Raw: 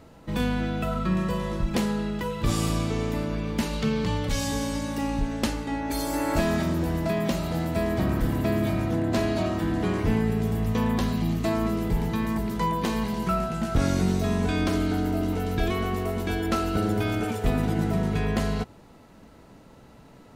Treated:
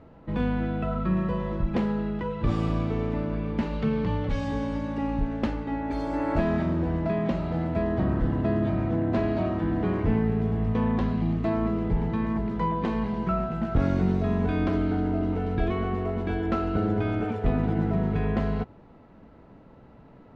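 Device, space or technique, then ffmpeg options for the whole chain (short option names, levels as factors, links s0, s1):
phone in a pocket: -filter_complex "[0:a]lowpass=3100,highshelf=f=2200:g=-9.5,asettb=1/sr,asplit=3[s0][s1][s2];[s0]atrim=end=7.824[s3];[s1]atrim=start=7.82:end=8.82,asetpts=PTS-STARTPTS,afade=t=in:d=0.004:c=qsin,afade=t=out:st=0.996:d=0.004:c=qsin,bandreject=f=2300:w=9.5[s4];[s2]atrim=start=8.816[s5];[s3][s4]acrossfade=d=0.004:c1=hsin:c2=qsin[s6];[s6][s5]acrossfade=d=0.004:c1=qsin:c2=hsin"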